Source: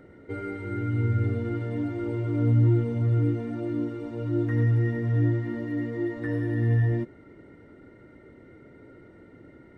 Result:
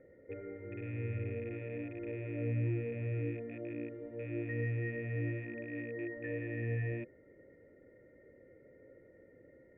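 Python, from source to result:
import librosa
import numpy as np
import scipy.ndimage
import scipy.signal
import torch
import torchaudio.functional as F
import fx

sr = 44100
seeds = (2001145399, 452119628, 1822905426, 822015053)

y = fx.rattle_buzz(x, sr, strikes_db=-31.0, level_db=-27.0)
y = fx.formant_cascade(y, sr, vowel='e')
y = fx.low_shelf(y, sr, hz=210.0, db=6.5)
y = y * librosa.db_to_amplitude(1.0)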